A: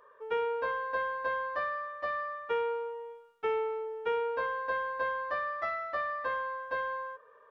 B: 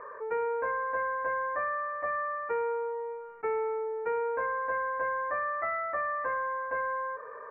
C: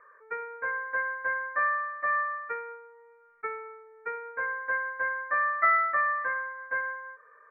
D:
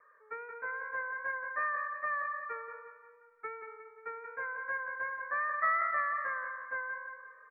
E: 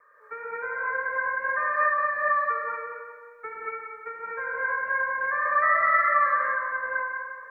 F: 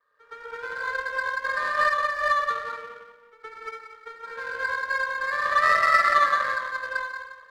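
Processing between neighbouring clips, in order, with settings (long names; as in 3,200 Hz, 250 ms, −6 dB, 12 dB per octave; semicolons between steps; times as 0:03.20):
elliptic low-pass filter 2,200 Hz, stop band 40 dB; envelope flattener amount 50%
flat-topped bell 1,700 Hz +12.5 dB 1.2 octaves; expander for the loud parts 2.5 to 1, over −32 dBFS
pitch vibrato 2.6 Hz 43 cents; on a send: repeating echo 177 ms, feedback 46%, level −7 dB; on the sum: level −7 dB
reverb whose tail is shaped and stops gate 260 ms rising, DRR −5.5 dB; level +3.5 dB
power curve on the samples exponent 1.4; echo ahead of the sound 116 ms −15 dB; level +4.5 dB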